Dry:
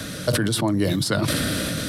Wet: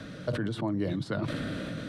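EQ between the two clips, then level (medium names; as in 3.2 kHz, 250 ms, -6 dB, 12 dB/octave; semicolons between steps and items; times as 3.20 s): dynamic bell 5.1 kHz, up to -5 dB, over -43 dBFS, Q 4.2; tape spacing loss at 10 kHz 23 dB; peaking EQ 75 Hz -12.5 dB 0.35 oct; -7.5 dB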